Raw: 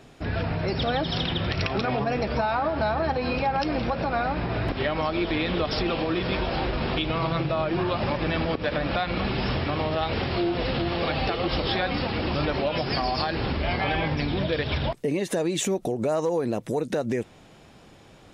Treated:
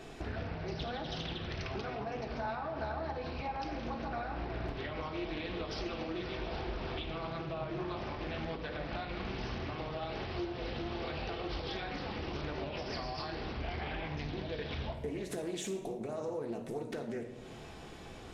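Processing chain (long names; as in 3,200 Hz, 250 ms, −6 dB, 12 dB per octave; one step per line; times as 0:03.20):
downward compressor 6 to 1, threshold −40 dBFS, peak gain reduction 17.5 dB
convolution reverb RT60 1.2 s, pre-delay 3 ms, DRR 1 dB
highs frequency-modulated by the lows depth 0.36 ms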